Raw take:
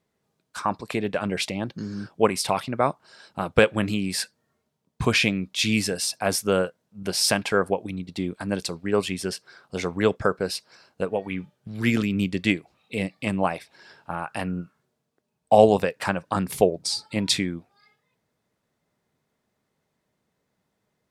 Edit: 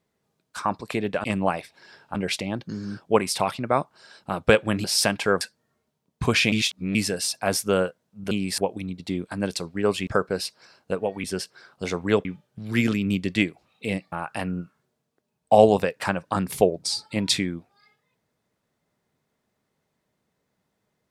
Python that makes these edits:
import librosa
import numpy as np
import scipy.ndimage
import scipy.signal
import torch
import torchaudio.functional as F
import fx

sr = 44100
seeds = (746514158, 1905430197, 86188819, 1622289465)

y = fx.edit(x, sr, fx.swap(start_s=3.93, length_s=0.27, other_s=7.1, other_length_s=0.57),
    fx.reverse_span(start_s=5.31, length_s=0.43),
    fx.move(start_s=9.16, length_s=1.01, to_s=11.34),
    fx.move(start_s=13.21, length_s=0.91, to_s=1.24), tone=tone)